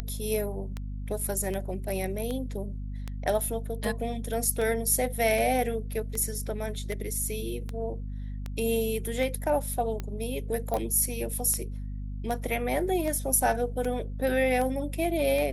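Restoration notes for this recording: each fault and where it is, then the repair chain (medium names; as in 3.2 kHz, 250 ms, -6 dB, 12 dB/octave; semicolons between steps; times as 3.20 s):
hum 50 Hz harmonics 5 -35 dBFS
tick 78 rpm -20 dBFS
10.74 s: pop -17 dBFS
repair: de-click; de-hum 50 Hz, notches 5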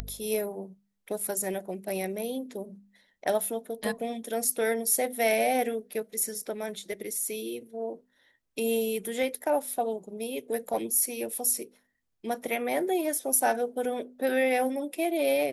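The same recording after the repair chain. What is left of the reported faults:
nothing left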